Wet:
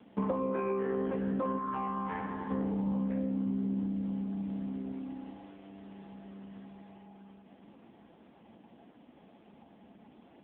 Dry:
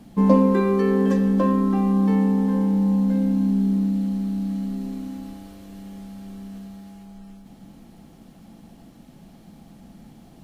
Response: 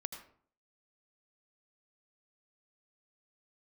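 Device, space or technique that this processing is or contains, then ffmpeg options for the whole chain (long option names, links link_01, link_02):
voicemail: -filter_complex "[0:a]asplit=3[link_01][link_02][link_03];[link_01]afade=type=out:start_time=1.57:duration=0.02[link_04];[link_02]lowshelf=frequency=740:width_type=q:width=1.5:gain=-8.5,afade=type=in:start_time=1.57:duration=0.02,afade=type=out:start_time=2.49:duration=0.02[link_05];[link_03]afade=type=in:start_time=2.49:duration=0.02[link_06];[link_04][link_05][link_06]amix=inputs=3:normalize=0,highpass=350,lowpass=3200,acompressor=threshold=-28dB:ratio=6" -ar 8000 -c:a libopencore_amrnb -b:a 5150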